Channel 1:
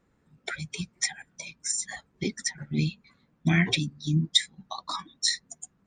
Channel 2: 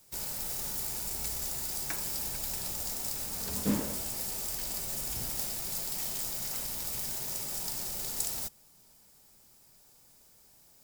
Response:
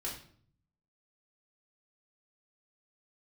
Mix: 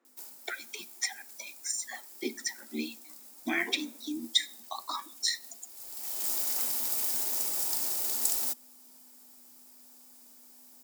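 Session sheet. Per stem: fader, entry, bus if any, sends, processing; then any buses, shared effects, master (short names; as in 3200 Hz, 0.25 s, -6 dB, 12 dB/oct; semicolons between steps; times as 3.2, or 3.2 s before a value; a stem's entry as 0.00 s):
-2.0 dB, 0.00 s, send -15.5 dB, dry
+2.5 dB, 0.05 s, no send, hum 50 Hz, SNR 19 dB; high shelf 6400 Hz +7 dB; auto duck -20 dB, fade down 0.35 s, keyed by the first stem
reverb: on, RT60 0.55 s, pre-delay 3 ms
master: rippled Chebyshev high-pass 230 Hz, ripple 3 dB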